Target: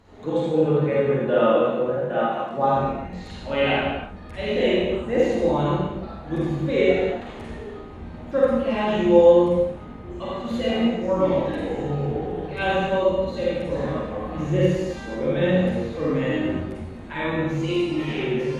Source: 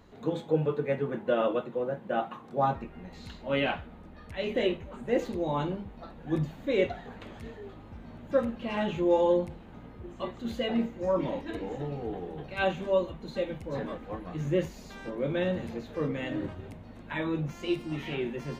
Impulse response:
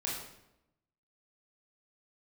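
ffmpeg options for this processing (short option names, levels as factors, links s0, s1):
-filter_complex "[1:a]atrim=start_sample=2205,afade=t=out:st=0.24:d=0.01,atrim=end_sample=11025,asetrate=22932,aresample=44100[s0];[0:a][s0]afir=irnorm=-1:irlink=0"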